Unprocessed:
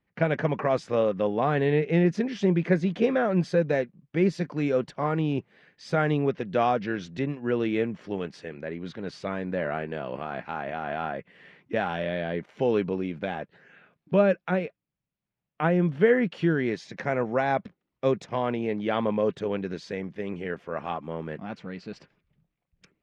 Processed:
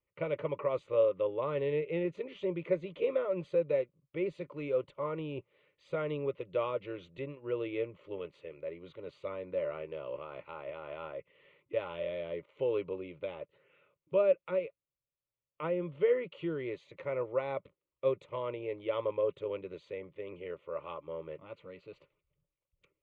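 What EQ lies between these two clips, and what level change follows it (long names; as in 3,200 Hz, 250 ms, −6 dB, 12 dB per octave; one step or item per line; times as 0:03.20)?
low-pass filter 5,700 Hz 12 dB per octave
parametric band 570 Hz +9.5 dB 0.23 octaves
phaser with its sweep stopped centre 1,100 Hz, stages 8
−8.0 dB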